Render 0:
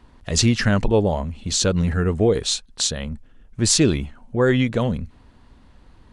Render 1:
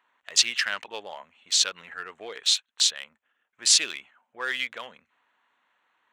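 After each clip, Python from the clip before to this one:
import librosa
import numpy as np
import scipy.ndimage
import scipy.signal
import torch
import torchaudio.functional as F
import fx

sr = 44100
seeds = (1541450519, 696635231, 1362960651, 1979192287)

y = fx.wiener(x, sr, points=9)
y = fx.dynamic_eq(y, sr, hz=3100.0, q=0.82, threshold_db=-37.0, ratio=4.0, max_db=7)
y = scipy.signal.sosfilt(scipy.signal.butter(2, 1400.0, 'highpass', fs=sr, output='sos'), y)
y = y * 10.0 ** (-2.5 / 20.0)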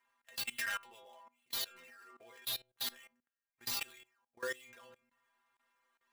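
y = fx.dead_time(x, sr, dead_ms=0.07)
y = fx.stiff_resonator(y, sr, f0_hz=120.0, decay_s=0.4, stiffness=0.008)
y = fx.level_steps(y, sr, step_db=21)
y = y * 10.0 ** (5.5 / 20.0)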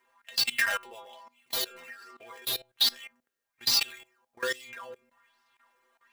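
y = fx.bell_lfo(x, sr, hz=1.2, low_hz=380.0, high_hz=5100.0, db=12)
y = y * 10.0 ** (7.0 / 20.0)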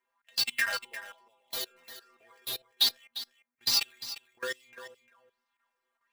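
y = x + 10.0 ** (-9.0 / 20.0) * np.pad(x, (int(350 * sr / 1000.0), 0))[:len(x)]
y = fx.upward_expand(y, sr, threshold_db=-46.0, expansion=1.5)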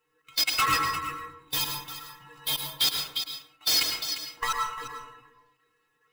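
y = fx.band_swap(x, sr, width_hz=500)
y = np.clip(y, -10.0 ** (-28.0 / 20.0), 10.0 ** (-28.0 / 20.0))
y = fx.rev_plate(y, sr, seeds[0], rt60_s=0.75, hf_ratio=0.45, predelay_ms=95, drr_db=2.0)
y = y * 10.0 ** (7.5 / 20.0)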